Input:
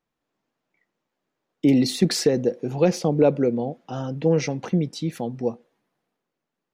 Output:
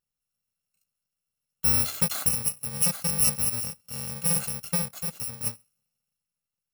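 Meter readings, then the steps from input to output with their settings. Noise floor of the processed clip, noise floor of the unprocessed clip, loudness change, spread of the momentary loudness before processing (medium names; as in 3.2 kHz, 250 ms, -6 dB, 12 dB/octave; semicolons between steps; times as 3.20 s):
under -85 dBFS, -83 dBFS, -2.0 dB, 10 LU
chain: bit-reversed sample order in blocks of 128 samples; trim -5.5 dB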